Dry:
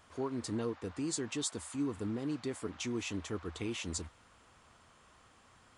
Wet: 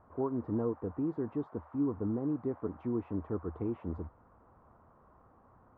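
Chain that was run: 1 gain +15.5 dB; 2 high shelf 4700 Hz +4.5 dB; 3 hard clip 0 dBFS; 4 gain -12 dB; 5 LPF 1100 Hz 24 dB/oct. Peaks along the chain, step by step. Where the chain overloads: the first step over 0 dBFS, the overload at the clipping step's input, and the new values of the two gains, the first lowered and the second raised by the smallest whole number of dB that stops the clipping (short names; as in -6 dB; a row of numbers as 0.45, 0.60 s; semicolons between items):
-7.5, -4.0, -4.0, -16.0, -21.0 dBFS; no overload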